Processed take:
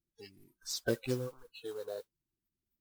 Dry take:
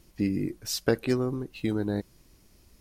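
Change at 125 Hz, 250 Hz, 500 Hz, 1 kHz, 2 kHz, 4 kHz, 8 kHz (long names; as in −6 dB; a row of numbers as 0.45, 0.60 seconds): −11.0, −15.0, −8.0, −12.0, −7.0, −6.5, −6.0 decibels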